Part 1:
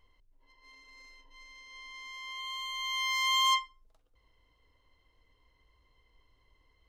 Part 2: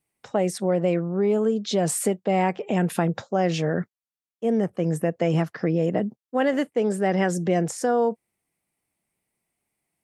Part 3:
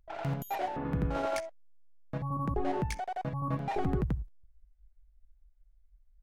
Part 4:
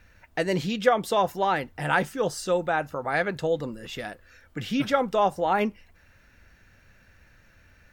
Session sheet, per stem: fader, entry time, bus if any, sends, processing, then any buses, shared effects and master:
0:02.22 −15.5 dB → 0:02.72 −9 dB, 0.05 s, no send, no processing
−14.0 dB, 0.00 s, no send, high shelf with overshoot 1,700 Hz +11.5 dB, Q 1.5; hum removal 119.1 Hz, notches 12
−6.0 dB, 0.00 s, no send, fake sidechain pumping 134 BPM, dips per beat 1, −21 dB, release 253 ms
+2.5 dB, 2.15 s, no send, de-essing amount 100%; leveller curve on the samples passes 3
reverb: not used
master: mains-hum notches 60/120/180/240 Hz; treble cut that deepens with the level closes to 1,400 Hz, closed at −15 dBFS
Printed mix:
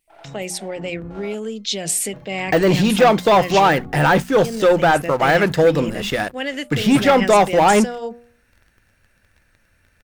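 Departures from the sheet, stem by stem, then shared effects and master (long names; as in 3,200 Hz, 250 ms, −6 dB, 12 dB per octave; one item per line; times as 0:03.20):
stem 1 −15.5 dB → −23.0 dB
stem 2 −14.0 dB → −5.0 dB
master: missing treble cut that deepens with the level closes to 1,400 Hz, closed at −15 dBFS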